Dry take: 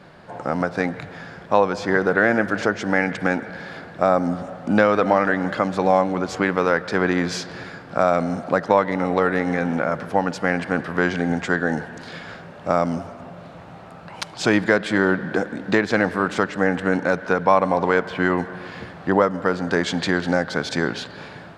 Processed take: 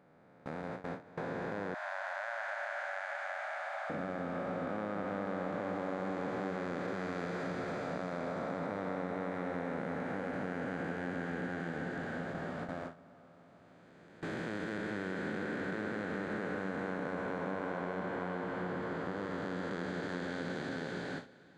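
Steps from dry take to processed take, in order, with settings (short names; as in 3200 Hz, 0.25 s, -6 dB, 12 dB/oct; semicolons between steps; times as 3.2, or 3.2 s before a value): time blur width 1.36 s; bell 5400 Hz -9.5 dB 0.22 oct; diffused feedback echo 0.455 s, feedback 46%, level -6 dB; gate with hold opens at -19 dBFS; 1.74–3.9 brick-wall FIR high-pass 560 Hz; compressor 2.5:1, threshold -32 dBFS, peak gain reduction 10 dB; gain -6 dB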